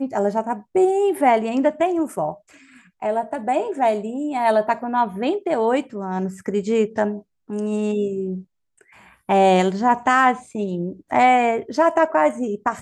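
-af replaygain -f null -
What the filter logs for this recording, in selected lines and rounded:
track_gain = -0.2 dB
track_peak = 0.422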